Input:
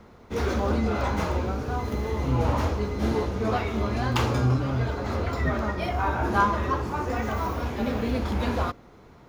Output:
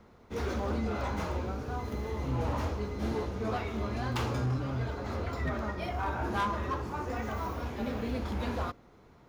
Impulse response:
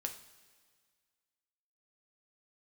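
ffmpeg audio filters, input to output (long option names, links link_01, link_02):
-af "volume=18.5dB,asoftclip=hard,volume=-18.5dB,volume=-7dB"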